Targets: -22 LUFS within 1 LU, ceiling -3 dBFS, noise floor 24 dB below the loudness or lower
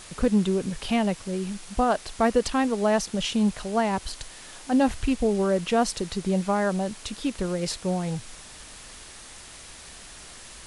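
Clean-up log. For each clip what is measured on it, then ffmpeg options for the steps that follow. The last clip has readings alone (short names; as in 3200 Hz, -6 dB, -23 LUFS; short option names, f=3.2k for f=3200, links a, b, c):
noise floor -45 dBFS; noise floor target -50 dBFS; loudness -25.5 LUFS; peak -10.0 dBFS; loudness target -22.0 LUFS
-> -af "afftdn=nr=6:nf=-45"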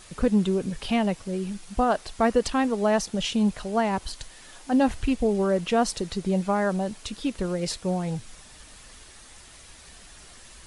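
noise floor -49 dBFS; noise floor target -50 dBFS
-> -af "afftdn=nr=6:nf=-49"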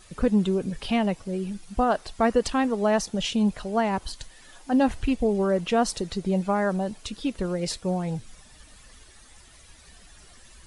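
noise floor -52 dBFS; loudness -26.0 LUFS; peak -10.0 dBFS; loudness target -22.0 LUFS
-> -af "volume=4dB"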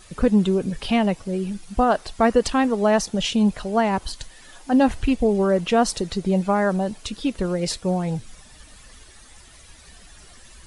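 loudness -22.0 LUFS; peak -6.0 dBFS; noise floor -48 dBFS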